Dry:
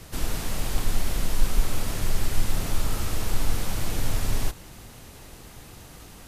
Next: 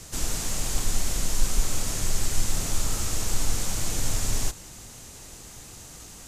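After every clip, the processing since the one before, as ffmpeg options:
-af "equalizer=f=7000:w=1.2:g=12.5,volume=0.794"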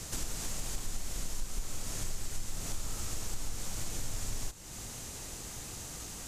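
-af "acompressor=threshold=0.0158:ratio=3,volume=1.12"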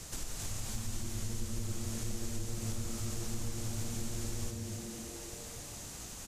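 -filter_complex "[0:a]asplit=8[s0][s1][s2][s3][s4][s5][s6][s7];[s1]adelay=267,afreqshift=-120,volume=0.562[s8];[s2]adelay=534,afreqshift=-240,volume=0.309[s9];[s3]adelay=801,afreqshift=-360,volume=0.17[s10];[s4]adelay=1068,afreqshift=-480,volume=0.0933[s11];[s5]adelay=1335,afreqshift=-600,volume=0.0513[s12];[s6]adelay=1602,afreqshift=-720,volume=0.0282[s13];[s7]adelay=1869,afreqshift=-840,volume=0.0155[s14];[s0][s8][s9][s10][s11][s12][s13][s14]amix=inputs=8:normalize=0,volume=0.631"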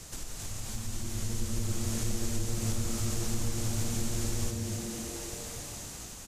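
-af "dynaudnorm=f=470:g=5:m=2"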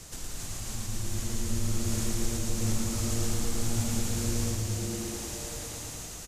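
-af "aecho=1:1:112|224|336|448|560|672|784|896:0.708|0.411|0.238|0.138|0.0801|0.0465|0.027|0.0156"

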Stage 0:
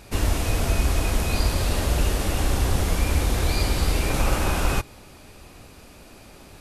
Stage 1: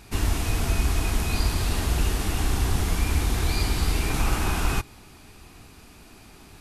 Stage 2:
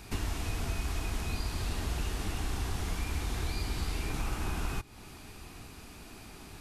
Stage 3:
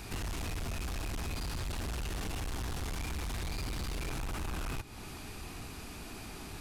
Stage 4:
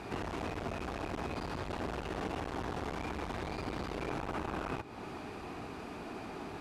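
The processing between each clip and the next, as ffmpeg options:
-af "equalizer=f=550:t=o:w=0.3:g=-13,volume=0.841"
-filter_complex "[0:a]acrossover=split=490|7800[s0][s1][s2];[s0]acompressor=threshold=0.0251:ratio=4[s3];[s1]acompressor=threshold=0.00794:ratio=4[s4];[s2]acompressor=threshold=0.00178:ratio=4[s5];[s3][s4][s5]amix=inputs=3:normalize=0"
-af "asoftclip=type=tanh:threshold=0.0119,volume=1.68"
-af "bandpass=f=570:t=q:w=0.64:csg=0,volume=2.37"

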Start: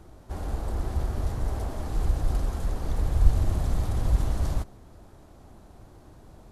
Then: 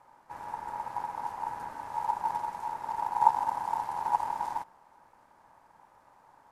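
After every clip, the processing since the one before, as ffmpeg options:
-af "aeval=exprs='0.562*(cos(1*acos(clip(val(0)/0.562,-1,1)))-cos(1*PI/2))+0.0355*(cos(7*acos(clip(val(0)/0.562,-1,1)))-cos(7*PI/2))':c=same,aeval=exprs='val(0)*sin(2*PI*900*n/s)':c=same,volume=0.75"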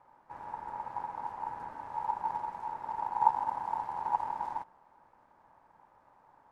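-af "lowpass=f=1900:p=1,volume=0.794"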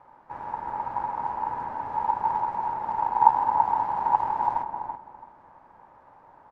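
-filter_complex "[0:a]aemphasis=mode=reproduction:type=50fm,asplit=2[s0][s1];[s1]adelay=333,lowpass=f=1300:p=1,volume=0.631,asplit=2[s2][s3];[s3]adelay=333,lowpass=f=1300:p=1,volume=0.26,asplit=2[s4][s5];[s5]adelay=333,lowpass=f=1300:p=1,volume=0.26,asplit=2[s6][s7];[s7]adelay=333,lowpass=f=1300:p=1,volume=0.26[s8];[s0][s2][s4][s6][s8]amix=inputs=5:normalize=0,volume=2.51"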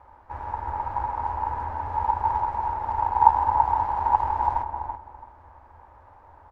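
-af "lowshelf=f=110:t=q:w=3:g=11.5,volume=1.19"

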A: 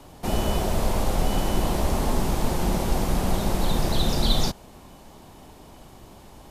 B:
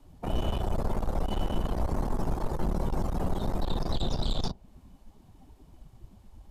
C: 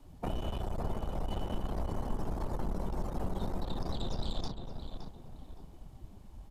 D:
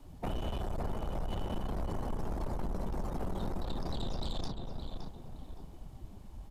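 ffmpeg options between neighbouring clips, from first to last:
-filter_complex "[0:a]afftdn=nr=20:nf=-34,acrossover=split=120|4300[s0][s1][s2];[s0]acompressor=threshold=0.0501:ratio=4[s3];[s1]acompressor=threshold=0.02:ratio=4[s4];[s2]acompressor=threshold=0.00398:ratio=4[s5];[s3][s4][s5]amix=inputs=3:normalize=0,aeval=exprs='(tanh(28.2*val(0)+0.55)-tanh(0.55))/28.2':c=same,volume=1.88"
-filter_complex "[0:a]acompressor=threshold=0.0282:ratio=6,asplit=2[s0][s1];[s1]adelay=567,lowpass=f=2400:p=1,volume=0.473,asplit=2[s2][s3];[s3]adelay=567,lowpass=f=2400:p=1,volume=0.35,asplit=2[s4][s5];[s5]adelay=567,lowpass=f=2400:p=1,volume=0.35,asplit=2[s6][s7];[s7]adelay=567,lowpass=f=2400:p=1,volume=0.35[s8];[s0][s2][s4][s6][s8]amix=inputs=5:normalize=0"
-af "asoftclip=type=tanh:threshold=0.0282,volume=1.33"

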